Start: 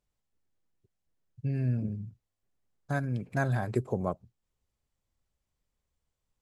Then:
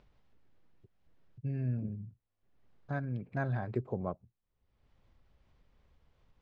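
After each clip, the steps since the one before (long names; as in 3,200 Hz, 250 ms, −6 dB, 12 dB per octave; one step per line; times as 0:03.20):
upward compression, threshold −43 dBFS
high-frequency loss of the air 250 metres
level −4.5 dB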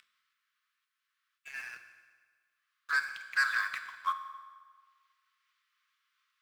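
Butterworth high-pass 1,100 Hz 96 dB per octave
leveller curve on the samples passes 3
on a send at −7.5 dB: convolution reverb RT60 1.6 s, pre-delay 5 ms
on the sum: level +9 dB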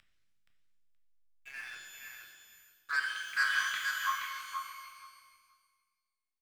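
slack as between gear wheels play −54 dBFS
on a send: repeating echo 474 ms, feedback 16%, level −5.5 dB
on the sum: reverb with rising layers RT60 1.2 s, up +12 semitones, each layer −8 dB, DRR 2.5 dB
level −3 dB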